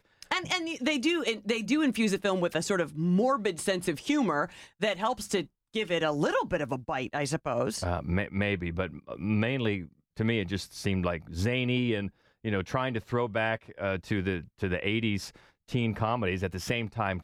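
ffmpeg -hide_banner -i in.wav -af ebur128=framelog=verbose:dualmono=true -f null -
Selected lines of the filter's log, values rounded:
Integrated loudness:
  I:         -26.9 LUFS
  Threshold: -37.0 LUFS
Loudness range:
  LRA:         3.2 LU
  Threshold: -47.0 LUFS
  LRA low:   -28.1 LUFS
  LRA high:  -25.0 LUFS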